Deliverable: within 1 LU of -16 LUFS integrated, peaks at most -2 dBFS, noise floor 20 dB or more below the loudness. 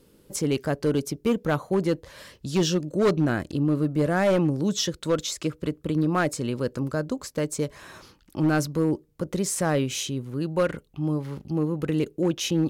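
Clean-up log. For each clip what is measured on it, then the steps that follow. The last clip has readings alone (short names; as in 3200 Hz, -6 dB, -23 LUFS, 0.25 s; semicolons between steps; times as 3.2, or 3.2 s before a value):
clipped 1.2%; flat tops at -16.0 dBFS; loudness -26.0 LUFS; peak -16.0 dBFS; loudness target -16.0 LUFS
-> clip repair -16 dBFS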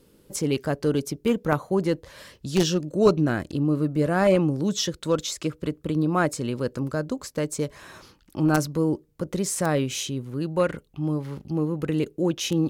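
clipped 0.0%; loudness -25.5 LUFS; peak -7.0 dBFS; loudness target -16.0 LUFS
-> gain +9.5 dB; limiter -2 dBFS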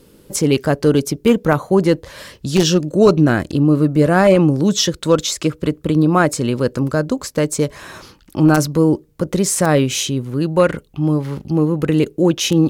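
loudness -16.5 LUFS; peak -2.0 dBFS; noise floor -50 dBFS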